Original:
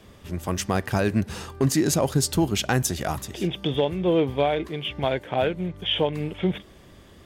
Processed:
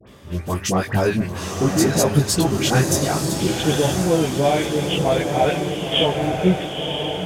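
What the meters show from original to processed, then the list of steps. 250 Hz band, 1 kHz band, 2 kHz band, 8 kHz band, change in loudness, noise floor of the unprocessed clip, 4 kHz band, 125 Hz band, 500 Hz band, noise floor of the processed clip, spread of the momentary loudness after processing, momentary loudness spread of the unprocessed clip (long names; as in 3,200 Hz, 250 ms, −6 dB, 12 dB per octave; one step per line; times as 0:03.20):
+5.0 dB, +6.0 dB, +5.5 dB, +6.0 dB, +5.0 dB, −50 dBFS, +6.0 dB, +5.5 dB, +5.0 dB, −34 dBFS, 6 LU, 8 LU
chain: high-pass filter 71 Hz
in parallel at −7 dB: soft clipping −19 dBFS, distortion −12 dB
on the sum: all-pass dispersion highs, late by 74 ms, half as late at 1,400 Hz
multi-voice chorus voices 2, 0.54 Hz, delay 18 ms, depth 5 ms
feedback delay with all-pass diffusion 978 ms, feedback 52%, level −4.5 dB
level +4.5 dB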